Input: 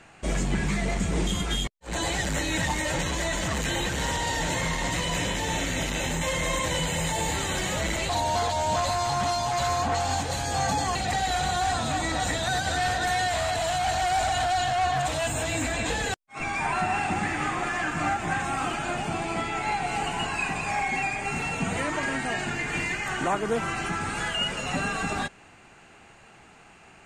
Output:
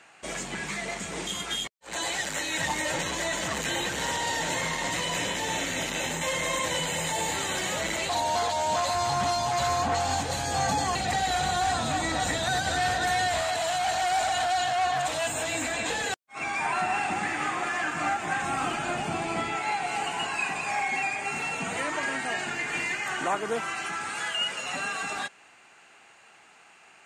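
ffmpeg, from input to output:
-af "asetnsamples=n=441:p=0,asendcmd='2.6 highpass f 310;8.95 highpass f 98;13.41 highpass f 380;18.43 highpass f 130;19.56 highpass f 460;23.61 highpass f 930',highpass=f=760:p=1"

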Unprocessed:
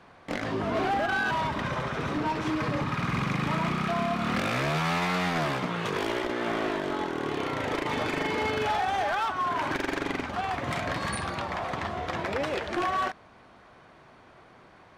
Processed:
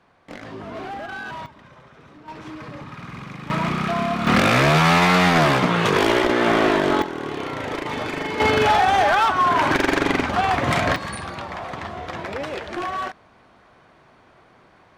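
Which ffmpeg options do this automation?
-af "asetnsamples=n=441:p=0,asendcmd='1.46 volume volume -17dB;2.28 volume volume -7.5dB;3.5 volume volume 5dB;4.27 volume volume 11.5dB;7.02 volume volume 2dB;8.4 volume volume 10.5dB;10.96 volume volume 0.5dB',volume=-5.5dB"

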